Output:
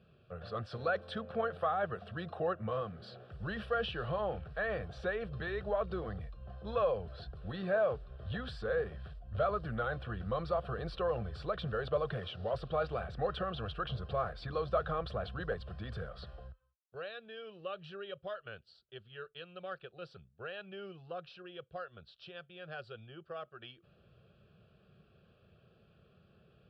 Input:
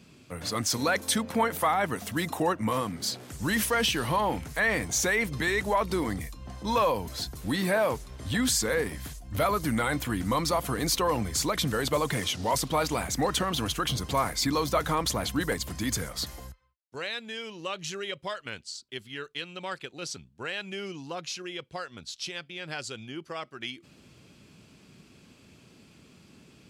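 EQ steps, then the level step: tape spacing loss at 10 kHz 42 dB; low shelf 340 Hz -4 dB; fixed phaser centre 1400 Hz, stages 8; 0.0 dB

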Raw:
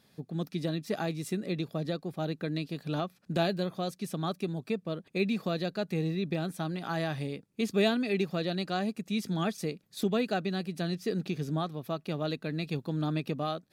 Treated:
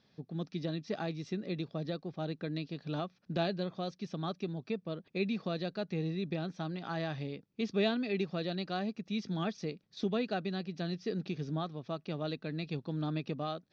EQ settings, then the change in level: Chebyshev low-pass 5900 Hz, order 5; -4.0 dB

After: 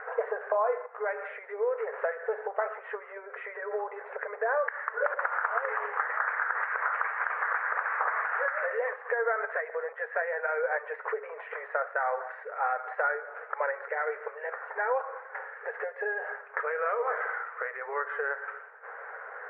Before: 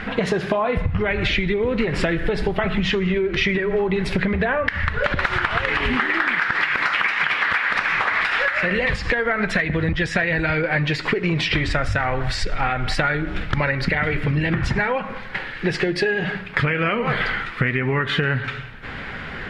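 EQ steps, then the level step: brick-wall FIR high-pass 420 Hz; steep low-pass 1600 Hz 36 dB/oct; -5.0 dB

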